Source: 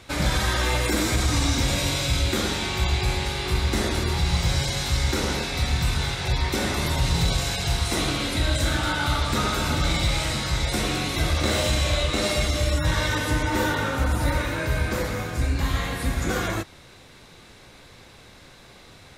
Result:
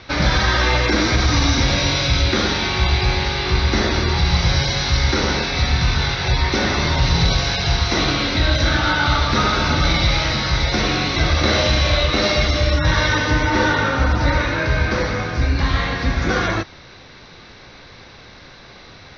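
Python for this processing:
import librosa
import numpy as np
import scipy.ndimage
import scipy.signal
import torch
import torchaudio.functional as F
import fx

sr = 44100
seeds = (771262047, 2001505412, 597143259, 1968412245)

y = scipy.signal.sosfilt(scipy.signal.cheby1(6, 3, 6000.0, 'lowpass', fs=sr, output='sos'), x)
y = y * 10.0 ** (8.5 / 20.0)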